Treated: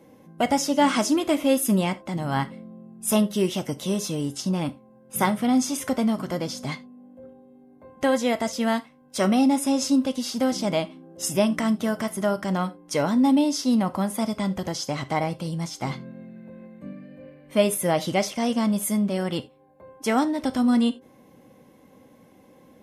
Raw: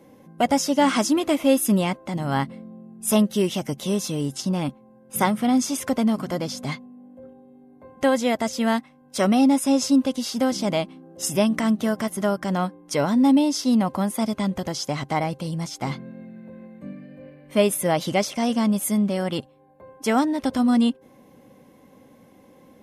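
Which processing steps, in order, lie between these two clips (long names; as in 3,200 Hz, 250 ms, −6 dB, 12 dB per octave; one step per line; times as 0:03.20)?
reverb whose tail is shaped and stops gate 110 ms falling, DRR 10.5 dB
level −1.5 dB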